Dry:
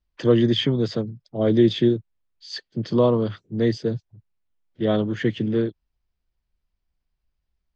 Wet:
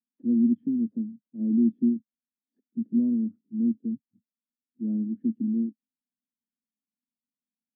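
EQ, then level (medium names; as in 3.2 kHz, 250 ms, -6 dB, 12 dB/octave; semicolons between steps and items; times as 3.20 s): Butterworth band-pass 240 Hz, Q 4.1; +1.5 dB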